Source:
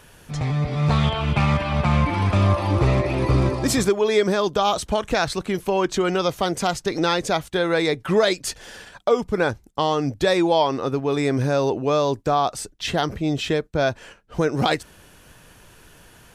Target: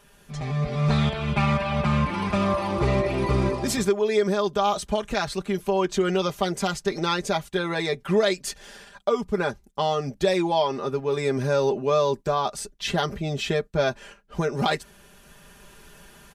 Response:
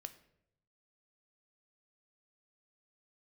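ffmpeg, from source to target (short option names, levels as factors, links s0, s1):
-af "aecho=1:1:5:0.78,dynaudnorm=f=320:g=3:m=2.11,volume=0.376"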